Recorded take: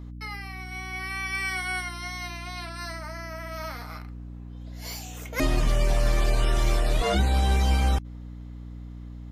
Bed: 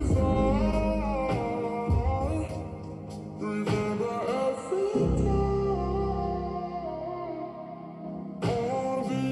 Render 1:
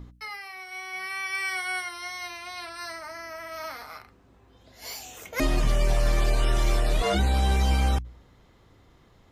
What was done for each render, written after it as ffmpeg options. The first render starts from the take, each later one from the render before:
-af "bandreject=f=60:t=h:w=4,bandreject=f=120:t=h:w=4,bandreject=f=180:t=h:w=4,bandreject=f=240:t=h:w=4,bandreject=f=300:t=h:w=4"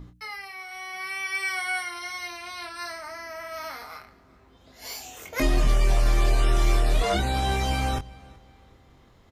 -filter_complex "[0:a]asplit=2[s0][s1];[s1]adelay=23,volume=0.473[s2];[s0][s2]amix=inputs=2:normalize=0,asplit=2[s3][s4];[s4]adelay=377,lowpass=f=4400:p=1,volume=0.0794,asplit=2[s5][s6];[s6]adelay=377,lowpass=f=4400:p=1,volume=0.38,asplit=2[s7][s8];[s8]adelay=377,lowpass=f=4400:p=1,volume=0.38[s9];[s3][s5][s7][s9]amix=inputs=4:normalize=0"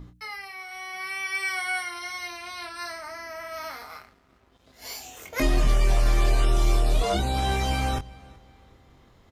-filter_complex "[0:a]asettb=1/sr,asplit=3[s0][s1][s2];[s0]atrim=end=3.704[s3];[s1]atrim=start=3.7:end=5.36,asetpts=PTS-STARTPTS,afade=t=in:d=0.004:c=qsin,afade=t=out:st=1.656:d=0.004:c=qsin,aeval=exprs='sgn(val(0))*max(abs(val(0))-0.00112,0)':c=same[s4];[s2]atrim=start=5.356[s5];[s3][s4]acrossfade=d=0.004:c1=hsin:c2=qsin[s6];[s6][s5]acrossfade=d=0.004:c1=qsin:c2=hsin,asettb=1/sr,asplit=3[s7][s8][s9];[s7]atrim=end=6.454[s10];[s8]atrim=start=6.45:end=7.38,asetpts=PTS-STARTPTS,afade=t=in:d=0.004:c=qsin,afade=t=out:st=0.926:d=0.004:c=qsin,equalizer=f=1800:w=2:g=-8[s11];[s9]atrim=start=7.376[s12];[s10][s11]acrossfade=d=0.004:c1=hsin:c2=qsin[s13];[s13][s12]acrossfade=d=0.004:c1=qsin:c2=hsin"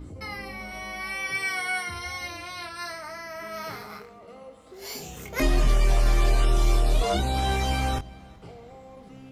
-filter_complex "[1:a]volume=0.133[s0];[0:a][s0]amix=inputs=2:normalize=0"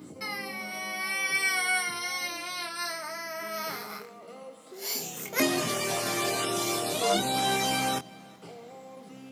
-af "highpass=f=160:w=0.5412,highpass=f=160:w=1.3066,highshelf=f=5000:g=9.5"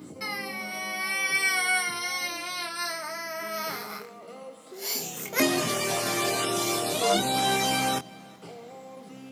-af "volume=1.26"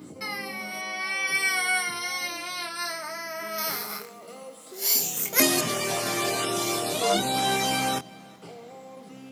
-filter_complex "[0:a]asplit=3[s0][s1][s2];[s0]afade=t=out:st=0.81:d=0.02[s3];[s1]highpass=240,lowpass=7200,afade=t=in:st=0.81:d=0.02,afade=t=out:st=1.26:d=0.02[s4];[s2]afade=t=in:st=1.26:d=0.02[s5];[s3][s4][s5]amix=inputs=3:normalize=0,asettb=1/sr,asplit=3[s6][s7][s8];[s6]atrim=end=3.584[s9];[s7]atrim=start=3.58:end=5.61,asetpts=PTS-STARTPTS,afade=t=in:d=0.004:c=qsin,afade=t=out:st=2.026:d=0.004:c=qsin,highshelf=f=5200:g=11.5[s10];[s8]atrim=start=5.606[s11];[s9][s10]acrossfade=d=0.004:c1=hsin:c2=qsin[s12];[s12][s11]acrossfade=d=0.004:c1=qsin:c2=hsin"

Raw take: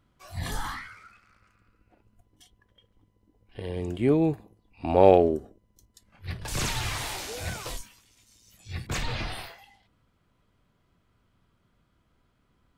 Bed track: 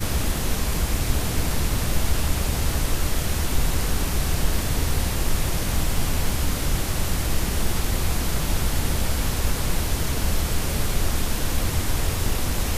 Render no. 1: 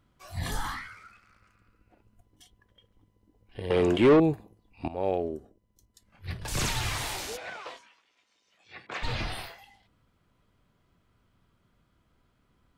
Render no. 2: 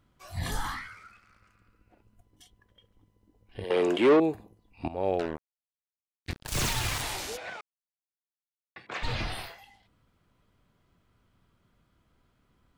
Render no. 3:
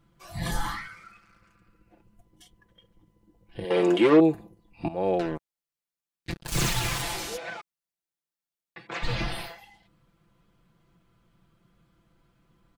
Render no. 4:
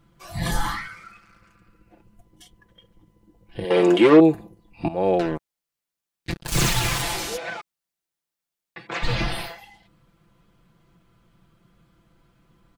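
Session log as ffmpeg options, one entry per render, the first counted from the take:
-filter_complex "[0:a]asettb=1/sr,asplit=3[s0][s1][s2];[s0]atrim=end=3.704[s3];[s1]atrim=start=3.7:end=4.2,asetpts=PTS-STARTPTS,afade=t=in:d=0.004:c=qsin,afade=t=out:st=0.496:d=0.004:c=qsin,asplit=2[s4][s5];[s5]highpass=f=720:p=1,volume=17.8,asoftclip=type=tanh:threshold=0.299[s6];[s4][s6]amix=inputs=2:normalize=0,lowpass=f=2000:p=1,volume=0.501[s7];[s2]atrim=start=4.196[s8];[s3][s7]acrossfade=d=0.004:c1=hsin:c2=qsin[s9];[s9][s8]acrossfade=d=0.004:c1=qsin:c2=hsin,asplit=3[s10][s11][s12];[s10]afade=t=out:st=7.36:d=0.02[s13];[s11]highpass=510,lowpass=2600,afade=t=in:st=7.36:d=0.02,afade=t=out:st=9.02:d=0.02[s14];[s12]afade=t=in:st=9.02:d=0.02[s15];[s13][s14][s15]amix=inputs=3:normalize=0,asplit=2[s16][s17];[s16]atrim=end=4.88,asetpts=PTS-STARTPTS,afade=t=out:st=4.876:d=0.004:c=hsin:silence=0.149624[s18];[s17]atrim=start=4.88,asetpts=PTS-STARTPTS,afade=t=in:d=1.68:silence=0.149624[s19];[s18][s19]concat=n=2:v=0:a=1"
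-filter_complex "[0:a]asettb=1/sr,asplit=3[s0][s1][s2];[s0]atrim=end=3.644[s3];[s1]atrim=start=3.64:end=4.35,asetpts=PTS-STARTPTS,afade=t=in:d=0.004:c=qsin,afade=t=out:st=0.706:d=0.004:c=qsin,highpass=290[s4];[s2]atrim=start=4.346[s5];[s3][s4]acrossfade=d=0.004:c1=hsin:c2=qsin[s6];[s6][s5]acrossfade=d=0.004:c1=qsin:c2=hsin,asettb=1/sr,asplit=3[s7][s8][s9];[s7]atrim=end=5.194[s10];[s8]atrim=start=5.19:end=7.02,asetpts=PTS-STARTPTS,afade=t=in:d=0.004:c=qsin,afade=t=out:st=1.826:d=0.004:c=qsin,acrusher=bits=4:mix=0:aa=0.5[s11];[s9]atrim=start=7.016[s12];[s10][s11]acrossfade=d=0.004:c1=hsin:c2=qsin[s13];[s13][s12]acrossfade=d=0.004:c1=qsin:c2=hsin,asplit=3[s14][s15][s16];[s14]atrim=end=7.61,asetpts=PTS-STARTPTS,afade=t=out:st=7.606:d=0.004:c=hsin[s17];[s15]atrim=start=7.61:end=8.76,asetpts=PTS-STARTPTS,volume=0[s18];[s16]atrim=start=8.76,asetpts=PTS-STARTPTS,afade=t=in:d=0.004:c=hsin[s19];[s17][s18][s19]concat=n=3:v=0:a=1"
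-af "equalizer=f=160:w=0.43:g=3.5,aecho=1:1:5.9:0.71"
-af "volume=1.78"

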